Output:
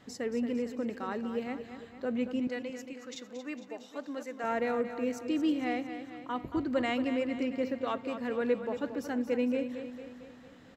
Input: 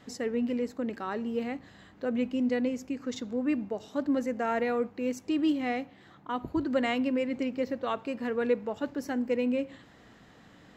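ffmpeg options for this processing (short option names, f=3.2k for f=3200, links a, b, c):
-filter_complex "[0:a]asettb=1/sr,asplit=3[a][b][c];[a]atrim=end=2.474[d];[b]atrim=start=2.47:end=4.44,asetpts=PTS-STARTPTS,afade=t=in:d=0.004:c=qsin,afade=t=out:st=1.966:d=0.004:c=qsin,highpass=f=890:p=1[e];[c]atrim=start=4.436[f];[d][e]acrossfade=d=0.004:c1=hsin:c2=qsin[g];[g][f]acrossfade=d=0.004:c1=qsin:c2=hsin,asplit=2[h][i];[i]aecho=0:1:227|454|681|908|1135|1362:0.316|0.174|0.0957|0.0526|0.0289|0.0159[j];[h][j]amix=inputs=2:normalize=0,volume=-2.5dB"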